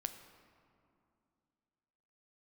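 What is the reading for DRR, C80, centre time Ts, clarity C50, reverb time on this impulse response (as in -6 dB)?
8.0 dB, 10.5 dB, 20 ms, 9.5 dB, 2.5 s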